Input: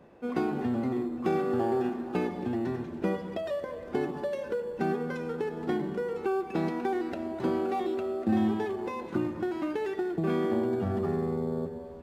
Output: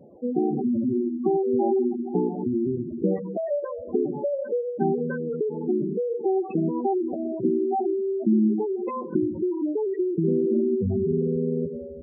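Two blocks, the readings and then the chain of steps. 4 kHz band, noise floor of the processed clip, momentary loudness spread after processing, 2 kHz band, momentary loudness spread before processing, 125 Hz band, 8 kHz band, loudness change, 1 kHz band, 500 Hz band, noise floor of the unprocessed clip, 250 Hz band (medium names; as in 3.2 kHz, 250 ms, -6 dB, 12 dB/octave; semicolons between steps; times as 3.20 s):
under -35 dB, -36 dBFS, 6 LU, -7.5 dB, 6 LU, +4.5 dB, no reading, +5.5 dB, +2.0 dB, +6.0 dB, -42 dBFS, +6.0 dB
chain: vibrato 0.9 Hz 15 cents; spectral gate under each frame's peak -10 dB strong; trim +6.5 dB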